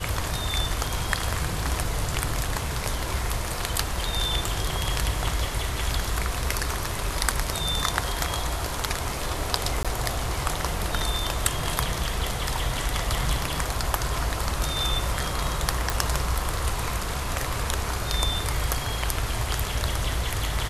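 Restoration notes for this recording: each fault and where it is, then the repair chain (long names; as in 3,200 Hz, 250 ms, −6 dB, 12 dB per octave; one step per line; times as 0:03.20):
0:09.83–0:09.85: drop-out 16 ms
0:15.90: click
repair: click removal
repair the gap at 0:09.83, 16 ms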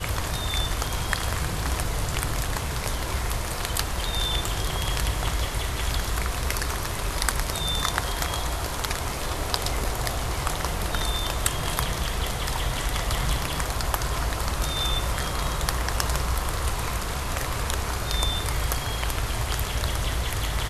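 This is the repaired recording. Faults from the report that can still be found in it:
none of them is left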